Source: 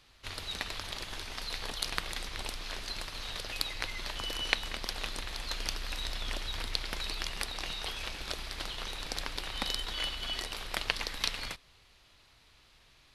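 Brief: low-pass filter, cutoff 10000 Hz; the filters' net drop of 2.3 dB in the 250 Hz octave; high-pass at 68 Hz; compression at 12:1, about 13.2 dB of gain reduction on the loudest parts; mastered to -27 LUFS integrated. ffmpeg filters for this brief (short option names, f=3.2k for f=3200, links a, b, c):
-af "highpass=68,lowpass=10k,equalizer=f=250:t=o:g=-3,acompressor=threshold=-37dB:ratio=12,volume=14dB"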